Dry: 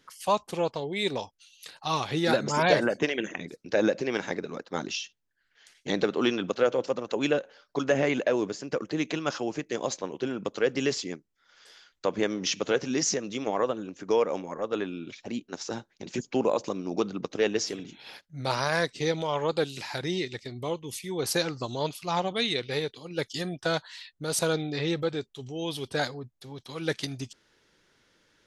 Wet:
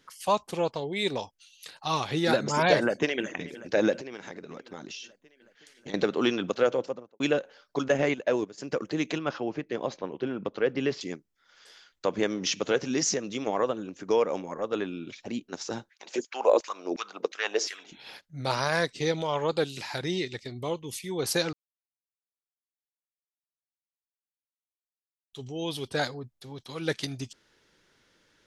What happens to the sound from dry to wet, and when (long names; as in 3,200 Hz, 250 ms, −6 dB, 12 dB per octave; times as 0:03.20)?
0:02.82–0:03.30: delay throw 370 ms, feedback 70%, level −17 dB
0:04.00–0:05.94: downward compressor 4 to 1, threshold −38 dBFS
0:06.68–0:07.20: fade out and dull
0:07.88–0:08.58: noise gate −27 dBFS, range −13 dB
0:09.18–0:11.01: high-frequency loss of the air 220 metres
0:15.89–0:17.92: auto-filter high-pass saw down 2.8 Hz 300–2,100 Hz
0:21.53–0:25.33: silence